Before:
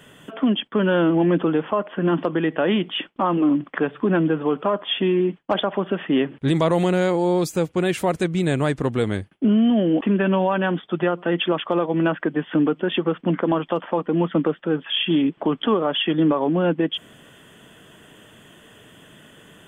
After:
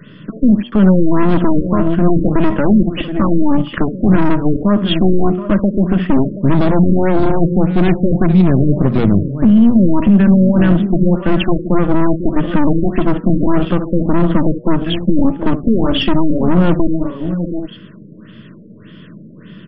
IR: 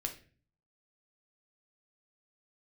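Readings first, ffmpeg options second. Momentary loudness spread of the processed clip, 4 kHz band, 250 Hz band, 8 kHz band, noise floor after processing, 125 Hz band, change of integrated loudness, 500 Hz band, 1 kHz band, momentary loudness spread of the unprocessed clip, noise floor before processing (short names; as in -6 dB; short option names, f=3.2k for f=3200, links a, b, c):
6 LU, 0.0 dB, +9.0 dB, under -25 dB, -38 dBFS, +12.0 dB, +7.5 dB, +3.5 dB, +3.5 dB, 5 LU, -50 dBFS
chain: -filter_complex "[0:a]asuperstop=centerf=790:order=8:qfactor=2.3,equalizer=f=320:t=o:w=0.43:g=14.5,asplit=2[a][b];[b]aecho=0:1:69|725|792:0.188|0.211|0.141[c];[a][c]amix=inputs=2:normalize=0,aeval=exprs='val(0)+0.0251*sin(2*PI*7600*n/s)':c=same,highpass=f=86:w=0.5412,highpass=f=86:w=1.3066,aeval=exprs='(tanh(4.47*val(0)+0.6)-tanh(0.6))/4.47':c=same,lowshelf=f=250:t=q:w=3:g=6.5,bandreject=f=120.2:t=h:w=4,bandreject=f=240.4:t=h:w=4,bandreject=f=360.6:t=h:w=4,bandreject=f=480.8:t=h:w=4,bandreject=f=601:t=h:w=4,bandreject=f=721.2:t=h:w=4,bandreject=f=841.4:t=h:w=4,bandreject=f=961.6:t=h:w=4,bandreject=f=1.0818k:t=h:w=4,bandreject=f=1.202k:t=h:w=4,bandreject=f=1.3222k:t=h:w=4,alimiter=level_in=8.5dB:limit=-1dB:release=50:level=0:latency=1,afftfilt=real='re*lt(b*sr/1024,570*pow(5600/570,0.5+0.5*sin(2*PI*1.7*pts/sr)))':imag='im*lt(b*sr/1024,570*pow(5600/570,0.5+0.5*sin(2*PI*1.7*pts/sr)))':win_size=1024:overlap=0.75,volume=-1dB"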